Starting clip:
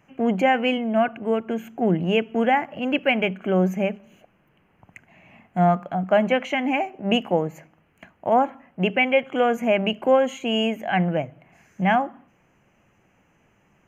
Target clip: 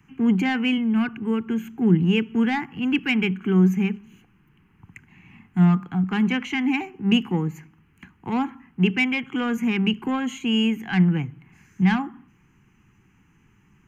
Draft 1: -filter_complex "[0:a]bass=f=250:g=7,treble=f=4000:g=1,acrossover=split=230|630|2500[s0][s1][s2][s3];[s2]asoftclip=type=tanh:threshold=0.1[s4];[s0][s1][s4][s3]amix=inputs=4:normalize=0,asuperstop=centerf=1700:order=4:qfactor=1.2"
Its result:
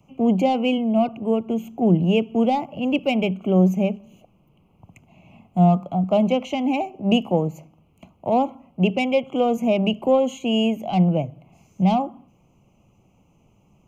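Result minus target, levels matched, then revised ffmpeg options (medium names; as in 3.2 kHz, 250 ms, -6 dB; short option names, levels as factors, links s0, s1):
500 Hz band +9.0 dB
-filter_complex "[0:a]bass=f=250:g=7,treble=f=4000:g=1,acrossover=split=230|630|2500[s0][s1][s2][s3];[s2]asoftclip=type=tanh:threshold=0.1[s4];[s0][s1][s4][s3]amix=inputs=4:normalize=0,asuperstop=centerf=600:order=4:qfactor=1.2"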